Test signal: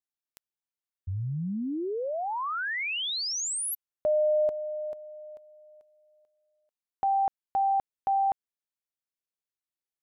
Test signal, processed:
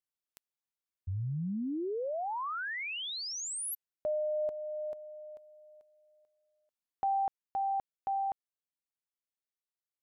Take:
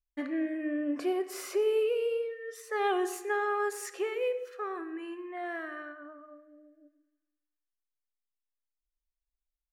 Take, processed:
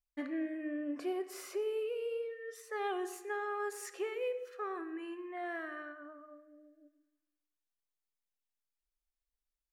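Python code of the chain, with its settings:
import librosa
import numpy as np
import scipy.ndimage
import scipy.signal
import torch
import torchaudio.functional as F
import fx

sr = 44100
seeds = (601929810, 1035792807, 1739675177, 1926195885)

y = fx.rider(x, sr, range_db=3, speed_s=0.5)
y = F.gain(torch.from_numpy(y), -6.0).numpy()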